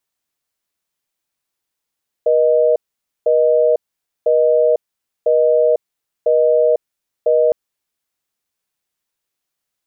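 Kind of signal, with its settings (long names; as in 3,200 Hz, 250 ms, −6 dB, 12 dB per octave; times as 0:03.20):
call progress tone busy tone, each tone −13 dBFS 5.26 s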